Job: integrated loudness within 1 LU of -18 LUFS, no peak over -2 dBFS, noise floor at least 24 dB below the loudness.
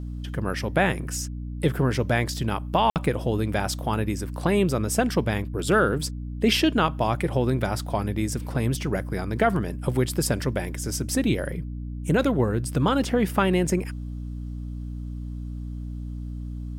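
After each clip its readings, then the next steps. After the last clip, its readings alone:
dropouts 1; longest dropout 58 ms; hum 60 Hz; highest harmonic 300 Hz; hum level -30 dBFS; loudness -25.5 LUFS; peak level -8.5 dBFS; loudness target -18.0 LUFS
-> interpolate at 2.90 s, 58 ms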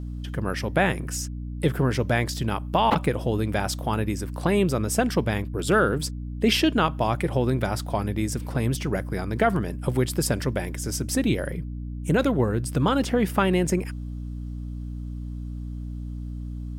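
dropouts 0; hum 60 Hz; highest harmonic 300 Hz; hum level -30 dBFS
-> de-hum 60 Hz, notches 5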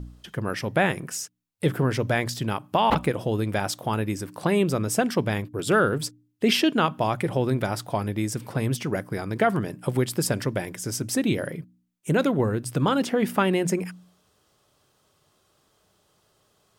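hum not found; loudness -25.5 LUFS; peak level -6.5 dBFS; loudness target -18.0 LUFS
-> trim +7.5 dB; peak limiter -2 dBFS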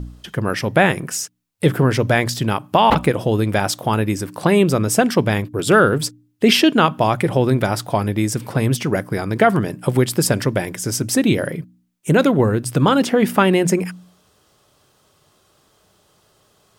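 loudness -18.0 LUFS; peak level -2.0 dBFS; noise floor -59 dBFS

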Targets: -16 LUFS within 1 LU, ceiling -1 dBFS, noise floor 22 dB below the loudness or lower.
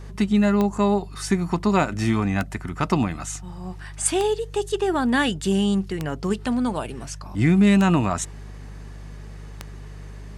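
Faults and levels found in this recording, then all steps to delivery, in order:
clicks found 6; hum 50 Hz; highest harmonic 150 Hz; hum level -35 dBFS; loudness -22.5 LUFS; peak level -6.5 dBFS; loudness target -16.0 LUFS
-> de-click; de-hum 50 Hz, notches 3; trim +6.5 dB; peak limiter -1 dBFS

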